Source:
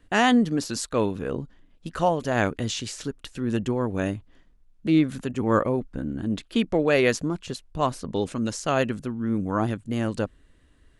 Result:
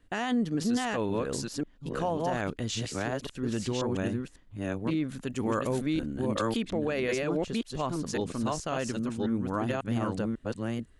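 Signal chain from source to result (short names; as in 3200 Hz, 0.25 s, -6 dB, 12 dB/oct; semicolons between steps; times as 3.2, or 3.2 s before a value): reverse delay 0.545 s, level -1.5 dB; limiter -15 dBFS, peak gain reduction 8.5 dB; 5.27–6.57 high shelf 3300 Hz +11 dB; gain -5 dB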